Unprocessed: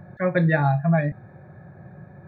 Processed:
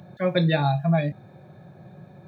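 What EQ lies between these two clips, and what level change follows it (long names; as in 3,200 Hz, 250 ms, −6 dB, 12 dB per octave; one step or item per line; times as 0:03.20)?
high-pass filter 130 Hz
high shelf with overshoot 2,400 Hz +9 dB, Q 3
0.0 dB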